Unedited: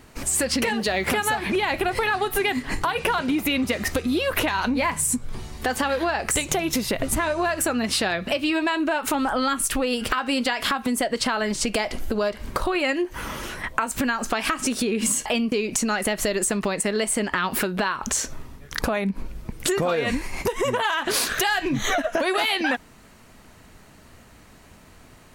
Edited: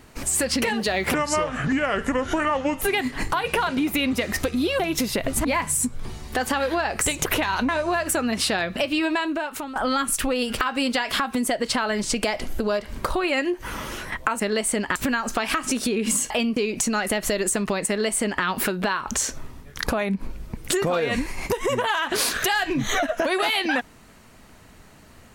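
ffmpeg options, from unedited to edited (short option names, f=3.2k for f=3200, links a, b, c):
-filter_complex "[0:a]asplit=10[a][b][c][d][e][f][g][h][i][j];[a]atrim=end=1.144[k];[b]atrim=start=1.14:end=2.33,asetpts=PTS-STARTPTS,asetrate=31311,aresample=44100,atrim=end_sample=73914,asetpts=PTS-STARTPTS[l];[c]atrim=start=2.326:end=4.312[m];[d]atrim=start=6.548:end=7.202[n];[e]atrim=start=4.738:end=6.552[o];[f]atrim=start=4.308:end=4.742[p];[g]atrim=start=7.198:end=9.27,asetpts=PTS-STARTPTS,afade=t=out:st=1.432:d=0.64:silence=0.211349[q];[h]atrim=start=9.27:end=13.912,asetpts=PTS-STARTPTS,afade=t=in:d=0.004:c=hsin:silence=0.211349[r];[i]atrim=start=16.828:end=17.392[s];[j]atrim=start=13.908[t];[k][l]acrossfade=d=0.004:c1=hsin:c2=hsin[u];[u][m]acrossfade=d=0.004:c1=hsin:c2=hsin[v];[v][n]acrossfade=d=0.004:c1=hsin:c2=hsin[w];[w][o]acrossfade=d=0.004:c1=hsin:c2=hsin[x];[x][p]acrossfade=d=0.004:c1=hsin:c2=hsin[y];[q][r]concat=n=2:v=0:a=1[z];[y][z]acrossfade=d=0.004:c1=hsin:c2=hsin[aa];[aa][s]acrossfade=d=0.004:c1=hsin:c2=hsin[ab];[ab][t]acrossfade=d=0.004:c1=hsin:c2=hsin"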